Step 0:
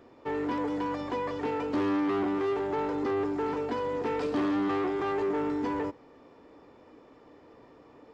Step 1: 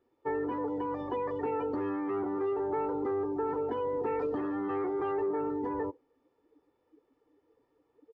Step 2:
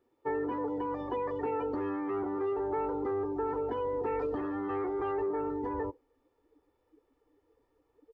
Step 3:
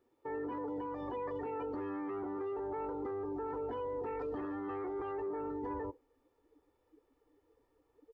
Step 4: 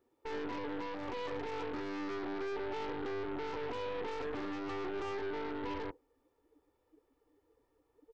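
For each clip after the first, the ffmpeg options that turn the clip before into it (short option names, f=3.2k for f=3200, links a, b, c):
-af "afftdn=nr=21:nf=-37,acompressor=threshold=-30dB:ratio=6,aecho=1:1:2.3:0.4"
-af "asubboost=boost=5.5:cutoff=67"
-af "alimiter=level_in=7.5dB:limit=-24dB:level=0:latency=1:release=28,volume=-7.5dB,volume=-1dB"
-af "aeval=exprs='0.0251*(cos(1*acos(clip(val(0)/0.0251,-1,1)))-cos(1*PI/2))+0.00708*(cos(6*acos(clip(val(0)/0.0251,-1,1)))-cos(6*PI/2))+0.00224*(cos(8*acos(clip(val(0)/0.0251,-1,1)))-cos(8*PI/2))':c=same,volume=-1dB"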